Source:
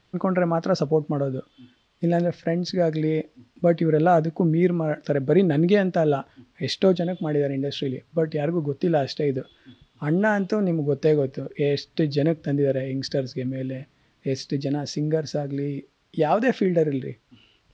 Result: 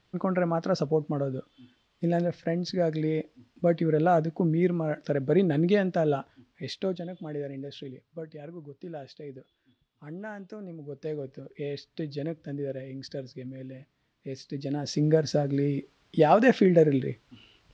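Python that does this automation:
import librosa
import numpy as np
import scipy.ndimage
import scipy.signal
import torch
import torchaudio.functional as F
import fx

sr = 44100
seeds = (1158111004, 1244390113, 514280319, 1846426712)

y = fx.gain(x, sr, db=fx.line((6.15, -4.5), (6.92, -11.5), (7.59, -11.5), (8.48, -18.0), (10.74, -18.0), (11.39, -11.5), (14.44, -11.5), (15.04, 1.0)))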